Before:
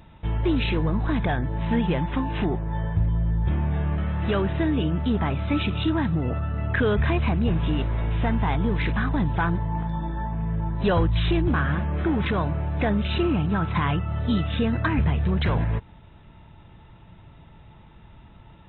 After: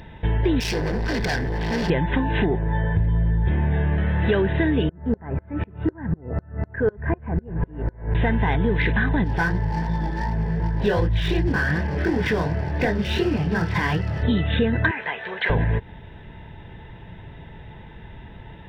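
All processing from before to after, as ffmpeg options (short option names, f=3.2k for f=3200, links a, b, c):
-filter_complex "[0:a]asettb=1/sr,asplit=3[a][b][c];[a]atrim=end=0.604[d];[b]atrim=start=0.6:end=1.9,asetpts=PTS-STARTPTS,afade=t=in:d=0.004:c=qsin,afade=t=out:st=1.296:d=0.004:c=qsin,aemphasis=mode=production:type=50fm,asoftclip=type=hard:threshold=-30.5dB[e];[c]atrim=start=1.896[f];[d][e]acrossfade=d=0.004:c1=hsin:c2=qsin[g];[g][f]acrossfade=d=0.004:c1=qsin:c2=hsin,asettb=1/sr,asplit=3[h][i][j];[h]atrim=end=4.894[k];[i]atrim=start=4.89:end=8.15,asetpts=PTS-STARTPTS,afade=t=in:d=0.004:c=qsin,afade=t=out:st=3.256:d=0.004:c=qsin,lowpass=f=1.6k:w=0.5412,lowpass=f=1.6k:w=1.3066,aeval=exprs='val(0)*pow(10,-36*if(lt(mod(-4*n/s,1),2*abs(-4)/1000),1-mod(-4*n/s,1)/(2*abs(-4)/1000),(mod(-4*n/s,1)-2*abs(-4)/1000)/(1-2*abs(-4)/1000))/20)':c=same[l];[j]atrim=start=8.146[m];[k][l]acrossfade=d=0.004:c1=hsin:c2=qsin[n];[n][m]acrossfade=d=0.004:c1=qsin:c2=hsin,asettb=1/sr,asplit=3[o][p][q];[o]atrim=end=9.244[r];[p]atrim=start=9.24:end=14.23,asetpts=PTS-STARTPTS,afade=t=in:d=0.004:c=qsin,afade=t=out:st=4.986:d=0.004:c=qsin,flanger=delay=16.5:depth=7.5:speed=2.7,aeval=exprs='sgn(val(0))*max(abs(val(0))-0.00631,0)':c=same[s];[q]atrim=start=14.226[t];[r][s]acrossfade=d=0.004:c1=hsin:c2=qsin[u];[u][t]acrossfade=d=0.004:c1=qsin:c2=hsin,asettb=1/sr,asplit=3[v][w][x];[v]atrim=end=14.914[y];[w]atrim=start=14.91:end=15.5,asetpts=PTS-STARTPTS,afade=t=in:d=0.004:c=qsin,afade=t=out:st=0.586:d=0.004:c=qsin,acrossover=split=3000[z][aa];[aa]acompressor=threshold=-53dB:ratio=4:attack=1:release=60[ab];[z][ab]amix=inputs=2:normalize=0,highpass=850,asplit=2[ac][ad];[ad]adelay=18,volume=-12dB[ae];[ac][ae]amix=inputs=2:normalize=0,atrim=end_sample=26019[af];[x]atrim=start=15.496[ag];[y][af]acrossfade=d=0.004:c1=hsin:c2=qsin[ah];[ah][ag]acrossfade=d=0.004:c1=qsin:c2=hsin,superequalizer=7b=1.78:10b=0.447:11b=2:14b=2.82,acompressor=threshold=-26dB:ratio=3,volume=7.5dB"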